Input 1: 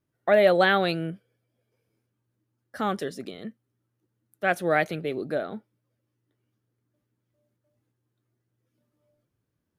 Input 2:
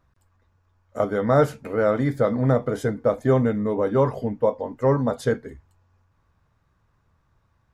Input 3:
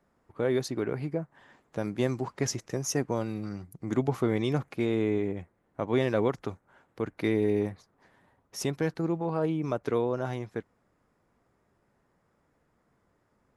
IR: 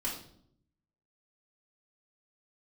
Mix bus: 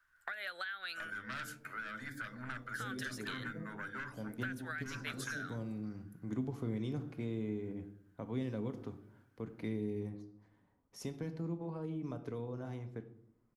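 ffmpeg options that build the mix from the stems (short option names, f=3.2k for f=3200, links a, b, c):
-filter_complex "[0:a]alimiter=limit=-18.5dB:level=0:latency=1:release=433,volume=0.5dB[a];[1:a]highshelf=f=6.4k:g=8.5,aeval=exprs='0.447*(cos(1*acos(clip(val(0)/0.447,-1,1)))-cos(1*PI/2))+0.126*(cos(5*acos(clip(val(0)/0.447,-1,1)))-cos(5*PI/2))':c=same,volume=-19dB,asplit=3[b][c][d];[c]volume=-23dB[e];[2:a]adelay=2400,volume=-16dB,asplit=2[f][g];[g]volume=-8.5dB[h];[d]apad=whole_len=703844[i];[f][i]sidechaincompress=threshold=-44dB:ratio=8:attack=16:release=164[j];[a][b]amix=inputs=2:normalize=0,highpass=f=1.5k:t=q:w=7.3,acompressor=threshold=-29dB:ratio=6,volume=0dB[k];[3:a]atrim=start_sample=2205[l];[e][h]amix=inputs=2:normalize=0[m];[m][l]afir=irnorm=-1:irlink=0[n];[j][k][n]amix=inputs=3:normalize=0,lowshelf=f=420:g=7,acrossover=split=280|3000[o][p][q];[p]acompressor=threshold=-43dB:ratio=6[r];[o][r][q]amix=inputs=3:normalize=0"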